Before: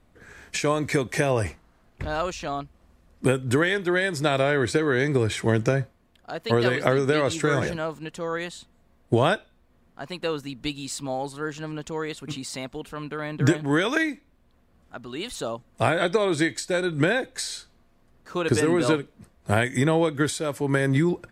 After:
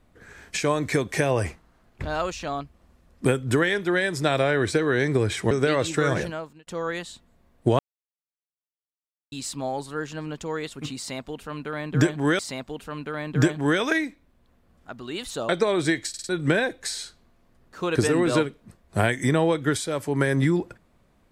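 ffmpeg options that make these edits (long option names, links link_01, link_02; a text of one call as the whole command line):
ffmpeg -i in.wav -filter_complex "[0:a]asplit=11[link_01][link_02][link_03][link_04][link_05][link_06][link_07][link_08][link_09][link_10][link_11];[link_01]atrim=end=5.512[link_12];[link_02]atrim=start=6.968:end=8.13,asetpts=PTS-STARTPTS,afade=type=out:start_time=0.702:duration=0.46[link_13];[link_03]atrim=start=8.13:end=9.25,asetpts=PTS-STARTPTS,afade=type=in:duration=0.004:curve=hsin,afade=type=out:start_time=1.116:duration=0.004:curve=hsin[link_14];[link_04]atrim=start=9.25:end=10.78,asetpts=PTS-STARTPTS,volume=0[link_15];[link_05]atrim=start=10.78:end=13.852,asetpts=PTS-STARTPTS,afade=type=in:duration=0.004:curve=hsin[link_16];[link_06]atrim=start=12.438:end=15.542[link_17];[link_07]atrim=start=16.018:end=16.672[link_18];[link_08]atrim=start=16.618:end=16.672[link_19];[link_09]atrim=start=16.618:end=16.672[link_20];[link_10]atrim=start=16.618:end=16.672[link_21];[link_11]atrim=start=16.818[link_22];[link_13][link_14][link_15][link_16]concat=n=4:v=0:a=1[link_23];[link_12][link_23]acrossfade=duration=0.004:curve1=hsin:curve2=hsin[link_24];[link_24][link_17]acrossfade=duration=0.004:curve1=hsin:curve2=hsin[link_25];[link_25][link_18]acrossfade=duration=0.004:curve1=hsin:curve2=hsin[link_26];[link_26][link_19]acrossfade=duration=0.004:curve1=hsin:curve2=hsin[link_27];[link_27][link_20]acrossfade=duration=0.004:curve1=hsin:curve2=hsin[link_28];[link_28][link_21]acrossfade=duration=0.004:curve1=hsin:curve2=hsin[link_29];[link_29][link_22]acrossfade=duration=0.004:curve1=hsin:curve2=hsin" out.wav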